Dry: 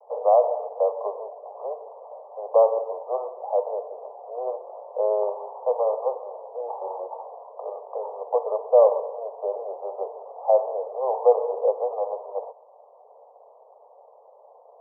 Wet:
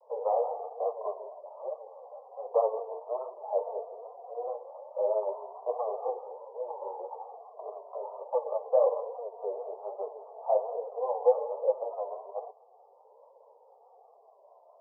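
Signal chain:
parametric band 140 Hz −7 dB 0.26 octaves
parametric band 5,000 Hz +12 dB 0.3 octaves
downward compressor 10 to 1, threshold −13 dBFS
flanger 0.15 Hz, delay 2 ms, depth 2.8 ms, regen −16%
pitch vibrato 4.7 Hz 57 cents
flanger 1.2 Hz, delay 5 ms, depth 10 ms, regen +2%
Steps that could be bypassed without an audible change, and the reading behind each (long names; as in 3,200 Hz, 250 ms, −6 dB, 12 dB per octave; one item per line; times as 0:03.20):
parametric band 140 Hz: nothing at its input below 360 Hz
parametric band 5,000 Hz: nothing at its input above 1,200 Hz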